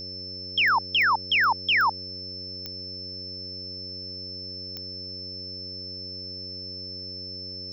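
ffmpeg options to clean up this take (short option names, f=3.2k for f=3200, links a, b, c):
-af "adeclick=t=4,bandreject=f=92.3:t=h:w=4,bandreject=f=184.6:t=h:w=4,bandreject=f=276.9:t=h:w=4,bandreject=f=369.2:t=h:w=4,bandreject=f=461.5:t=h:w=4,bandreject=f=553.8:t=h:w=4,bandreject=f=5.3k:w=30,agate=range=-21dB:threshold=-29dB"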